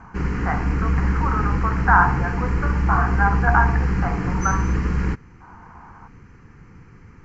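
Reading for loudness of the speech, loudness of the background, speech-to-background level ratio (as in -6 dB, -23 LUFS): -23.5 LUFS, -23.0 LUFS, -0.5 dB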